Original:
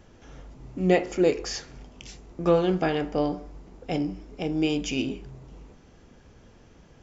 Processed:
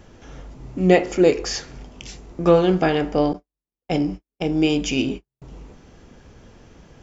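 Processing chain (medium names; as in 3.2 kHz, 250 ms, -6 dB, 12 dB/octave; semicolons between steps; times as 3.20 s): 3.33–5.42 s: gate -34 dBFS, range -54 dB; trim +6 dB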